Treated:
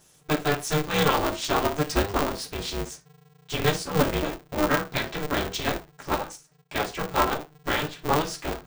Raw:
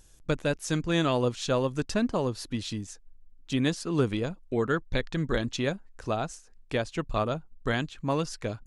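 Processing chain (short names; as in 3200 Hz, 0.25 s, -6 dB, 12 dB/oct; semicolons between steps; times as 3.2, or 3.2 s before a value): HPF 300 Hz 6 dB/oct; 6.15–6.75 level quantiser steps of 15 dB; reverb, pre-delay 4 ms, DRR -4.5 dB; polarity switched at an audio rate 150 Hz; gain -2 dB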